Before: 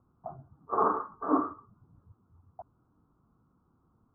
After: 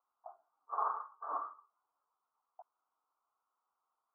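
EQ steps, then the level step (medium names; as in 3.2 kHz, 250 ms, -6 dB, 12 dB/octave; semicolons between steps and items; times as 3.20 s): high-pass 780 Hz 24 dB/octave; low-pass 1.1 kHz 6 dB/octave; distance through air 390 m; -2.0 dB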